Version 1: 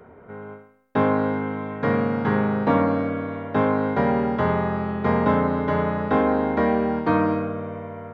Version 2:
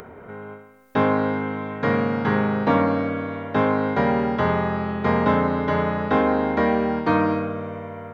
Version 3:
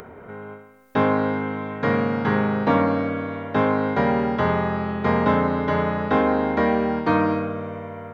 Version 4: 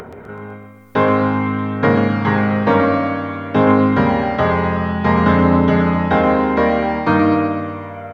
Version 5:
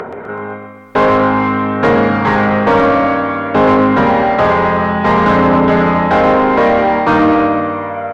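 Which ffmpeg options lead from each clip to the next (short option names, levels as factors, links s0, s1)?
-af "highshelf=f=2300:g=7.5,acompressor=mode=upward:threshold=0.0178:ratio=2.5"
-af anull
-af "aphaser=in_gain=1:out_gain=1:delay=2.1:decay=0.32:speed=0.54:type=triangular,aecho=1:1:126|252|378|504|630|756:0.422|0.223|0.118|0.0628|0.0333|0.0176,volume=1.68"
-filter_complex "[0:a]asplit=2[s0][s1];[s1]highpass=f=720:p=1,volume=11.2,asoftclip=type=tanh:threshold=0.891[s2];[s0][s2]amix=inputs=2:normalize=0,lowpass=f=1100:p=1,volume=0.501"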